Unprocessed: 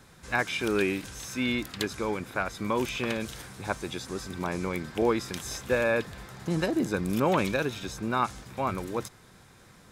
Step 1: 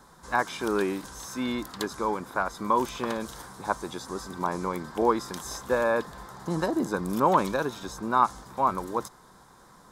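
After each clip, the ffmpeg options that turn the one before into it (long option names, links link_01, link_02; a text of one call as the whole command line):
ffmpeg -i in.wav -af "equalizer=frequency=100:width_type=o:width=0.67:gain=-11,equalizer=frequency=1000:width_type=o:width=0.67:gain=10,equalizer=frequency=2500:width_type=o:width=0.67:gain=-12" out.wav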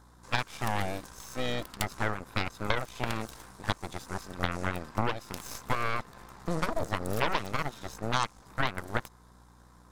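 ffmpeg -i in.wav -af "aeval=exprs='val(0)+0.00316*(sin(2*PI*60*n/s)+sin(2*PI*2*60*n/s)/2+sin(2*PI*3*60*n/s)/3+sin(2*PI*4*60*n/s)/4+sin(2*PI*5*60*n/s)/5)':channel_layout=same,aeval=exprs='0.447*(cos(1*acos(clip(val(0)/0.447,-1,1)))-cos(1*PI/2))+0.02*(cos(5*acos(clip(val(0)/0.447,-1,1)))-cos(5*PI/2))+0.1*(cos(7*acos(clip(val(0)/0.447,-1,1)))-cos(7*PI/2))+0.1*(cos(8*acos(clip(val(0)/0.447,-1,1)))-cos(8*PI/2))':channel_layout=same,acompressor=threshold=-26dB:ratio=6,volume=2dB" out.wav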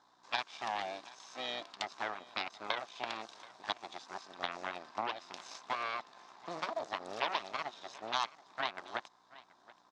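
ffmpeg -i in.wav -af "highpass=480,equalizer=frequency=490:width_type=q:width=4:gain=-8,equalizer=frequency=710:width_type=q:width=4:gain=3,equalizer=frequency=1400:width_type=q:width=4:gain=-5,equalizer=frequency=2000:width_type=q:width=4:gain=-3,equalizer=frequency=3700:width_type=q:width=4:gain=3,lowpass=frequency=5800:width=0.5412,lowpass=frequency=5800:width=1.3066,aecho=1:1:729:0.1,volume=-3.5dB" out.wav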